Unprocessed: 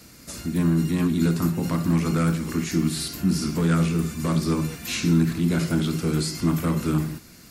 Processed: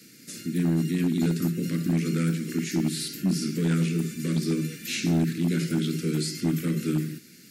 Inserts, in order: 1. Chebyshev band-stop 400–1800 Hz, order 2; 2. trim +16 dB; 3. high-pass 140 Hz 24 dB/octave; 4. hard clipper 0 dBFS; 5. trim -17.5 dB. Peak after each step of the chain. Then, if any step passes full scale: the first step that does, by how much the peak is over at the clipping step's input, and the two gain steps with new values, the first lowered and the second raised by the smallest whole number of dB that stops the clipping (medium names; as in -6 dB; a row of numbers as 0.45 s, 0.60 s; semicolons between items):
-10.5 dBFS, +5.5 dBFS, +5.5 dBFS, 0.0 dBFS, -17.5 dBFS; step 2, 5.5 dB; step 2 +10 dB, step 5 -11.5 dB